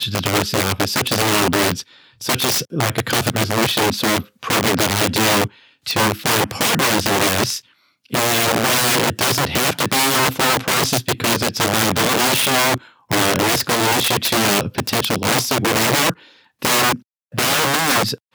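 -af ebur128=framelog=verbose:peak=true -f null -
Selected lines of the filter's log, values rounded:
Integrated loudness:
  I:         -16.9 LUFS
  Threshold: -27.2 LUFS
Loudness range:
  LRA:         2.1 LU
  Threshold: -37.1 LUFS
  LRA low:   -18.2 LUFS
  LRA high:  -16.1 LUFS
True peak:
  Peak:       -2.7 dBFS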